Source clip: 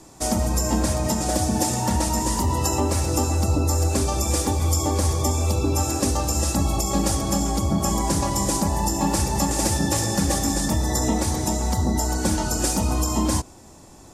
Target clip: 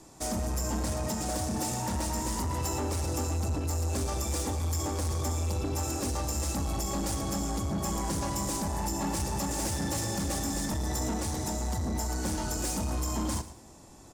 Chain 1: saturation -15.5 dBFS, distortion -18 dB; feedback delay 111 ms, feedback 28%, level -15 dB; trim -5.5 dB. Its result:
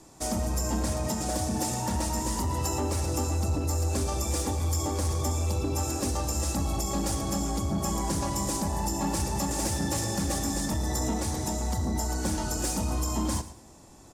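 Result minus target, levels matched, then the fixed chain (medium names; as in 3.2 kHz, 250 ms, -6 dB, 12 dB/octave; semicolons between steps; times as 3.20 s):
saturation: distortion -7 dB
saturation -21.5 dBFS, distortion -12 dB; feedback delay 111 ms, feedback 28%, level -15 dB; trim -5.5 dB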